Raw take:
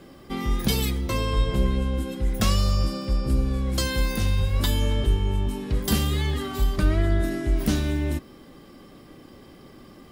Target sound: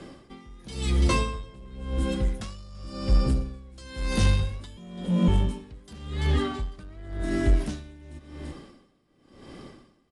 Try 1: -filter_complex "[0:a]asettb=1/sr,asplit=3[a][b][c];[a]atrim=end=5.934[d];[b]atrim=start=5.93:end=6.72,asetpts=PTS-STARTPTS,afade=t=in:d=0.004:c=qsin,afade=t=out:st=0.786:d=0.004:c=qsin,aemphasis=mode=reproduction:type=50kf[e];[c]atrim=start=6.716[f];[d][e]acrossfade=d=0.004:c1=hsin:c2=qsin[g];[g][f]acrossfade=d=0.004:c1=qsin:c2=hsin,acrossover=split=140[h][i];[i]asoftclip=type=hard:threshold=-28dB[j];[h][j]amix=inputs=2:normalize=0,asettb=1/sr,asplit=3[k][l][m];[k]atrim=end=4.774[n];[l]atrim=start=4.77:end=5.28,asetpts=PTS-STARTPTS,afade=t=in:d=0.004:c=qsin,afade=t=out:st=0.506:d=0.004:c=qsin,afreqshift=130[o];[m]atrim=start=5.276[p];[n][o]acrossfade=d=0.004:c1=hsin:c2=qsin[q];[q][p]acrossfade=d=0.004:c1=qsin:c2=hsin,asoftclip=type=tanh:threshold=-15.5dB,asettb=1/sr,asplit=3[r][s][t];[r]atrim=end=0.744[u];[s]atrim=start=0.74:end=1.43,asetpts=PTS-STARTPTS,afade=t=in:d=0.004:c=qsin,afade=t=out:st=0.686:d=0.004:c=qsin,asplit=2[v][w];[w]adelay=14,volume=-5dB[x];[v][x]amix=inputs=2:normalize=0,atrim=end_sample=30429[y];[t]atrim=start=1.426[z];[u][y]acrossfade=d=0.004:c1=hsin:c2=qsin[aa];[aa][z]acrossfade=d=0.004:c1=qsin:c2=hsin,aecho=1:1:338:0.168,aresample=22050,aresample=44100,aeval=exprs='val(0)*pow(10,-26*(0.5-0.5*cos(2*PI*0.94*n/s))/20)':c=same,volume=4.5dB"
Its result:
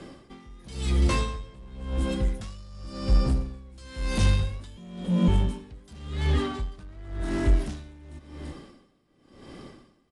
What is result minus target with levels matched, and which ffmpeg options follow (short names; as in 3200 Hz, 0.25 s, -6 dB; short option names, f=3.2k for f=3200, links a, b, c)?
hard clip: distortion +12 dB
-filter_complex "[0:a]asettb=1/sr,asplit=3[a][b][c];[a]atrim=end=5.934[d];[b]atrim=start=5.93:end=6.72,asetpts=PTS-STARTPTS,afade=t=in:d=0.004:c=qsin,afade=t=out:st=0.786:d=0.004:c=qsin,aemphasis=mode=reproduction:type=50kf[e];[c]atrim=start=6.716[f];[d][e]acrossfade=d=0.004:c1=hsin:c2=qsin[g];[g][f]acrossfade=d=0.004:c1=qsin:c2=hsin,acrossover=split=140[h][i];[i]asoftclip=type=hard:threshold=-19.5dB[j];[h][j]amix=inputs=2:normalize=0,asettb=1/sr,asplit=3[k][l][m];[k]atrim=end=4.774[n];[l]atrim=start=4.77:end=5.28,asetpts=PTS-STARTPTS,afade=t=in:d=0.004:c=qsin,afade=t=out:st=0.506:d=0.004:c=qsin,afreqshift=130[o];[m]atrim=start=5.276[p];[n][o]acrossfade=d=0.004:c1=hsin:c2=qsin[q];[q][p]acrossfade=d=0.004:c1=qsin:c2=hsin,asoftclip=type=tanh:threshold=-15.5dB,asettb=1/sr,asplit=3[r][s][t];[r]atrim=end=0.744[u];[s]atrim=start=0.74:end=1.43,asetpts=PTS-STARTPTS,afade=t=in:d=0.004:c=qsin,afade=t=out:st=0.686:d=0.004:c=qsin,asplit=2[v][w];[w]adelay=14,volume=-5dB[x];[v][x]amix=inputs=2:normalize=0,atrim=end_sample=30429[y];[t]atrim=start=1.426[z];[u][y]acrossfade=d=0.004:c1=hsin:c2=qsin[aa];[aa][z]acrossfade=d=0.004:c1=qsin:c2=hsin,aecho=1:1:338:0.168,aresample=22050,aresample=44100,aeval=exprs='val(0)*pow(10,-26*(0.5-0.5*cos(2*PI*0.94*n/s))/20)':c=same,volume=4.5dB"